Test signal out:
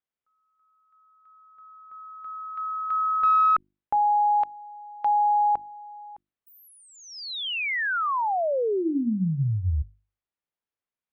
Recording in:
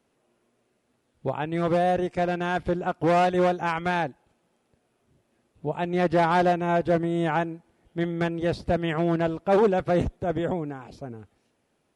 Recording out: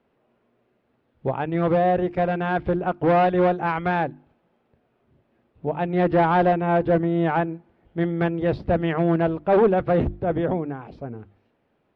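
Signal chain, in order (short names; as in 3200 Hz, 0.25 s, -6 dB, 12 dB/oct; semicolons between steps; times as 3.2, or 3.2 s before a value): notches 50/100/150/200/250/300/350 Hz; in parallel at -3 dB: one-sided clip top -21 dBFS; on the sum: air absorption 350 m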